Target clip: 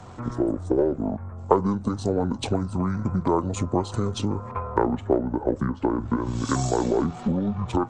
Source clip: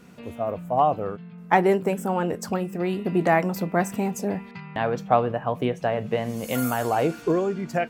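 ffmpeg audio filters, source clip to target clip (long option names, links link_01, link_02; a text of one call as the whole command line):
ffmpeg -i in.wav -filter_complex "[0:a]aeval=exprs='if(lt(val(0),0),0.708*val(0),val(0))':channel_layout=same,acrossover=split=290|570|7000[link_01][link_02][link_03][link_04];[link_02]acontrast=34[link_05];[link_01][link_05][link_03][link_04]amix=inputs=4:normalize=0,asetrate=22696,aresample=44100,atempo=1.94306,acompressor=threshold=-29dB:ratio=6,equalizer=frequency=500:width_type=o:width=1:gain=5,equalizer=frequency=1000:width_type=o:width=1:gain=10,equalizer=frequency=8000:width_type=o:width=1:gain=6,volume=6dB" out.wav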